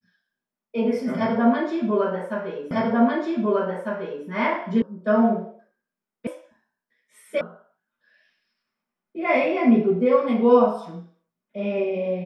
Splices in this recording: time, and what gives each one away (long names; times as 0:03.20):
0:02.71: the same again, the last 1.55 s
0:04.82: cut off before it has died away
0:06.27: cut off before it has died away
0:07.41: cut off before it has died away